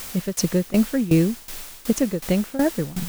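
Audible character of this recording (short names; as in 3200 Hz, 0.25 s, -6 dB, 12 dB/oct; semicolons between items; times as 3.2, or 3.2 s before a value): a quantiser's noise floor 6-bit, dither triangular; tremolo saw down 2.7 Hz, depth 85%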